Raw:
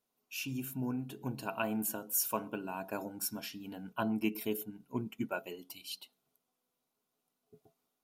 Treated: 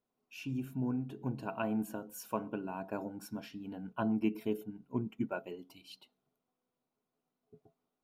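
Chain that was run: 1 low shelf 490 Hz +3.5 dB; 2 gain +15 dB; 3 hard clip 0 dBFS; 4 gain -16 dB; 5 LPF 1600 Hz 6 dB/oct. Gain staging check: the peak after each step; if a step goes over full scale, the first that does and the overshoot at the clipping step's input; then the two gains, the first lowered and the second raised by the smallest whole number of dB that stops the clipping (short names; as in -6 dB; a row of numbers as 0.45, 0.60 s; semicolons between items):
-17.5, -2.5, -2.5, -18.5, -20.0 dBFS; no overload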